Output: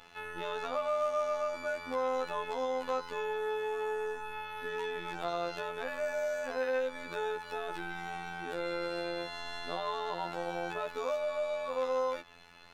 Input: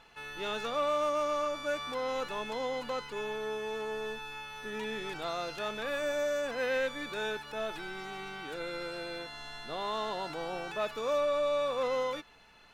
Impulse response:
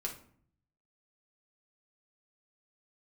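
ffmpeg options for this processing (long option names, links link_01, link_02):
-filter_complex "[0:a]acrossover=split=570|1400[link_01][link_02][link_03];[link_01]acompressor=threshold=-43dB:ratio=4[link_04];[link_02]acompressor=threshold=-37dB:ratio=4[link_05];[link_03]acompressor=threshold=-49dB:ratio=4[link_06];[link_04][link_05][link_06]amix=inputs=3:normalize=0,afftfilt=real='hypot(re,im)*cos(PI*b)':imag='0':win_size=2048:overlap=0.75,volume=6dB"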